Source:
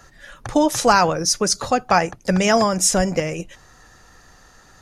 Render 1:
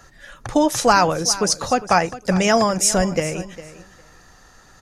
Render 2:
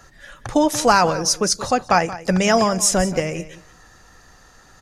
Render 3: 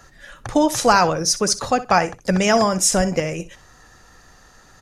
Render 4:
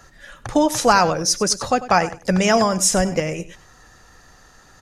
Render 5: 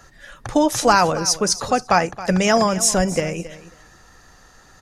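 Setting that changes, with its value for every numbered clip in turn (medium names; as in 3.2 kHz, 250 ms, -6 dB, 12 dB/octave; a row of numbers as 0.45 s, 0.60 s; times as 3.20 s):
feedback delay, time: 405 ms, 178 ms, 63 ms, 97 ms, 272 ms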